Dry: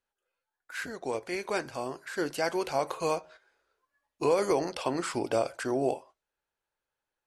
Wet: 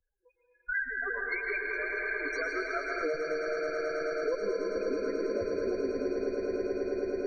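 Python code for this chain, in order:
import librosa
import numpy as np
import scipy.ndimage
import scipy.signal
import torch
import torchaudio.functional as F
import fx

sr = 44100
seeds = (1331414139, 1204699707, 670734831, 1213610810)

y = fx.lower_of_two(x, sr, delay_ms=0.51)
y = fx.weighting(y, sr, curve='ITU-R 468', at=(0.75, 3.01))
y = fx.noise_reduce_blind(y, sr, reduce_db=15)
y = fx.high_shelf(y, sr, hz=3000.0, db=-5.5)
y = fx.hum_notches(y, sr, base_hz=60, count=4)
y = fx.step_gate(y, sr, bpm=193, pattern='xx.x.x.x.x', floor_db=-12.0, edge_ms=4.5)
y = fx.spec_topn(y, sr, count=4)
y = fx.wow_flutter(y, sr, seeds[0], rate_hz=2.1, depth_cents=15.0)
y = fx.echo_swell(y, sr, ms=108, loudest=8, wet_db=-10.0)
y = fx.rev_plate(y, sr, seeds[1], rt60_s=2.7, hf_ratio=0.95, predelay_ms=100, drr_db=0.5)
y = fx.band_squash(y, sr, depth_pct=100)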